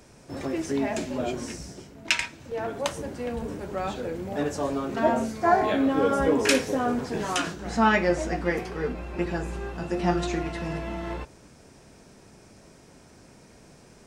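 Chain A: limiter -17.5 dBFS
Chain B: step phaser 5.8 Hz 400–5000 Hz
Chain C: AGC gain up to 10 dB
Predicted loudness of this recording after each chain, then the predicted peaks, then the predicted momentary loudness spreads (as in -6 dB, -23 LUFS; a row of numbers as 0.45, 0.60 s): -29.5, -30.0, -20.0 LUFS; -17.5, -8.5, -1.5 dBFS; 9, 13, 10 LU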